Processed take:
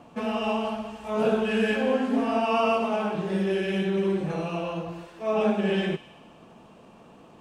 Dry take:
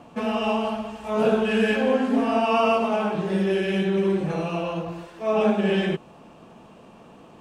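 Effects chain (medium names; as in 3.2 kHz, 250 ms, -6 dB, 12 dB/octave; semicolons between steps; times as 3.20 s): feedback echo behind a high-pass 62 ms, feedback 74%, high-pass 2.6 kHz, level -14 dB; trim -3 dB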